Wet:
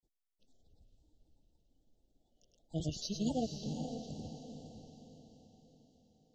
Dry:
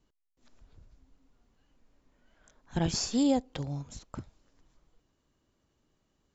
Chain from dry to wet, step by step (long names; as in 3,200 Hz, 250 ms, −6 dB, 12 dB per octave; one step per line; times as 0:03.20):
brick-wall band-stop 800–3,000 Hz
granular cloud, grains 18 per second, pitch spread up and down by 3 semitones
feedback delay with all-pass diffusion 502 ms, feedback 47%, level −6.5 dB
level −6 dB